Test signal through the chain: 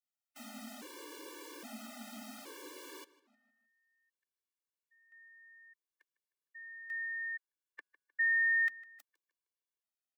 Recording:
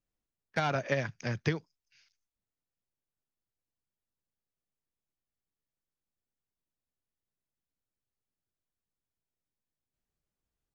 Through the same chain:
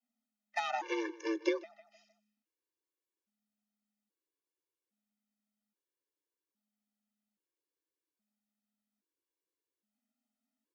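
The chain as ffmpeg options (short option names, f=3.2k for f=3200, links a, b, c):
-filter_complex "[0:a]adynamicequalizer=threshold=0.00126:dfrequency=1000:dqfactor=6.1:tfrequency=1000:tqfactor=6.1:attack=5:release=100:ratio=0.375:range=2:mode=boostabove:tftype=bell,asplit=2[a][b];[b]adelay=154,lowpass=f=4.3k:p=1,volume=-18dB,asplit=2[c][d];[d]adelay=154,lowpass=f=4.3k:p=1,volume=0.45,asplit=2[e][f];[f]adelay=154,lowpass=f=4.3k:p=1,volume=0.45,asplit=2[g][h];[h]adelay=154,lowpass=f=4.3k:p=1,volume=0.45[i];[a][c][e][g][i]amix=inputs=5:normalize=0,afreqshift=210,afftfilt=real='re*gt(sin(2*PI*0.61*pts/sr)*(1-2*mod(floor(b*sr/1024/300),2)),0)':imag='im*gt(sin(2*PI*0.61*pts/sr)*(1-2*mod(floor(b*sr/1024/300),2)),0)':win_size=1024:overlap=0.75"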